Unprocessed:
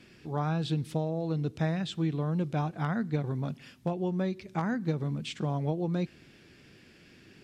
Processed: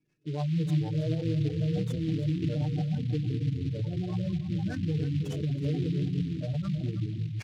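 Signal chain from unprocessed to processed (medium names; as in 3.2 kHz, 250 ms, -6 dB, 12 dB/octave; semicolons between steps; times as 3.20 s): gate -43 dBFS, range -21 dB; ever faster or slower copies 327 ms, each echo -5 st, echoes 2; on a send at -7 dB: reverberation RT60 1.3 s, pre-delay 12 ms; on the sum: peak limiter -24 dBFS, peak gain reduction 9.5 dB; rotary cabinet horn 6.7 Hz; comb 6.6 ms, depth 65%; spectral gate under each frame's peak -15 dB strong; delay 322 ms -14 dB; delay time shaken by noise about 2.9 kHz, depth 0.048 ms; trim +1.5 dB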